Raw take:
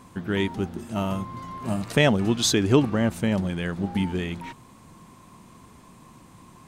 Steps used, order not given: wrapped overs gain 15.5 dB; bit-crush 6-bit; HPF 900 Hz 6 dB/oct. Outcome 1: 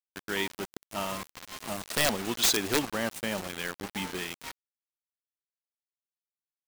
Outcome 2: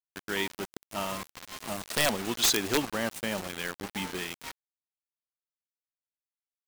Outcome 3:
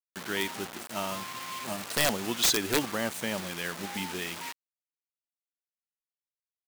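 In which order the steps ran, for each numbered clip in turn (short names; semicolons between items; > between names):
HPF > wrapped overs > bit-crush; HPF > bit-crush > wrapped overs; bit-crush > HPF > wrapped overs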